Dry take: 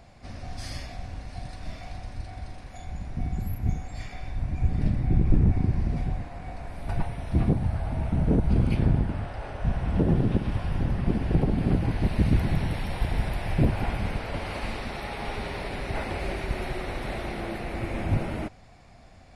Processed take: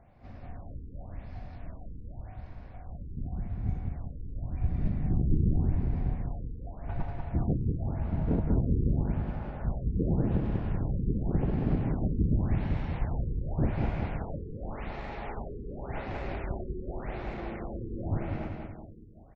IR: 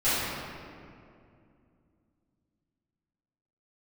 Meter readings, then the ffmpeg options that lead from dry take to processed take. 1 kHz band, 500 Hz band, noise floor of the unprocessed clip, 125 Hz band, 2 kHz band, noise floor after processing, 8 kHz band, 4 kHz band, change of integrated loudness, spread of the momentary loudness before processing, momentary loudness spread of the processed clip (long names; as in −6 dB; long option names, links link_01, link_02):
−6.5 dB, −4.5 dB, −50 dBFS, −4.0 dB, −10.0 dB, −46 dBFS, can't be measured, below −15 dB, −4.5 dB, 16 LU, 17 LU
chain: -af "adynamicsmooth=sensitivity=2.5:basefreq=2100,aecho=1:1:190|380|570|760|950|1140|1330:0.631|0.341|0.184|0.0994|0.0537|0.029|0.0156,afftfilt=real='re*lt(b*sr/1024,470*pow(8000/470,0.5+0.5*sin(2*PI*0.88*pts/sr)))':imag='im*lt(b*sr/1024,470*pow(8000/470,0.5+0.5*sin(2*PI*0.88*pts/sr)))':win_size=1024:overlap=0.75,volume=-6dB"